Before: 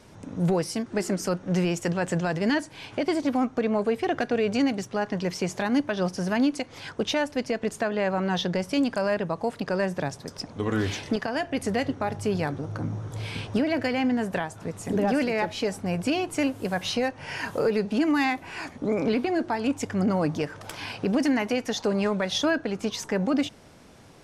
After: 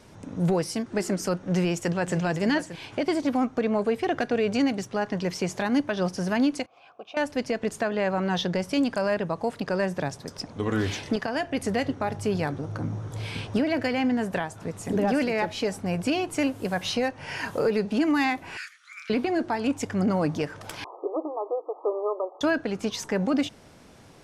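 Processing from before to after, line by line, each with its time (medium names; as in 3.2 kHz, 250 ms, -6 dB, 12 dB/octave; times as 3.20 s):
1.42–2.17 s: echo throw 580 ms, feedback 10%, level -13 dB
6.66–7.17 s: vowel filter a
18.57–19.10 s: steep high-pass 1.3 kHz 72 dB/octave
20.84–22.41 s: brick-wall FIR band-pass 310–1300 Hz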